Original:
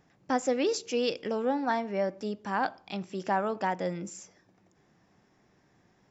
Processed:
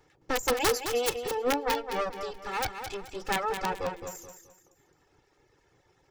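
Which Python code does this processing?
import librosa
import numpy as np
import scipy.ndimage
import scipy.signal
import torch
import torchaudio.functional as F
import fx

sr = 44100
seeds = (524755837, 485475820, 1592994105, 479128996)

y = fx.lower_of_two(x, sr, delay_ms=2.3)
y = (np.mod(10.0 ** (21.5 / 20.0) * y + 1.0, 2.0) - 1.0) / 10.0 ** (21.5 / 20.0)
y = fx.dereverb_blind(y, sr, rt60_s=1.1)
y = fx.echo_feedback(y, sr, ms=214, feedback_pct=32, wet_db=-8.0)
y = y * 10.0 ** (3.5 / 20.0)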